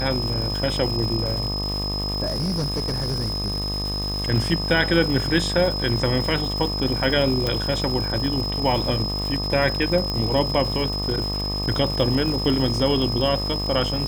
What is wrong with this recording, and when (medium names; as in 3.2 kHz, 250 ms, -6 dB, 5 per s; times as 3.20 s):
buzz 50 Hz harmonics 25 -28 dBFS
crackle 430 per s -29 dBFS
whine 5.1 kHz -27 dBFS
2.27–4.29 s: clipped -20.5 dBFS
7.47 s: pop
10.10 s: pop -13 dBFS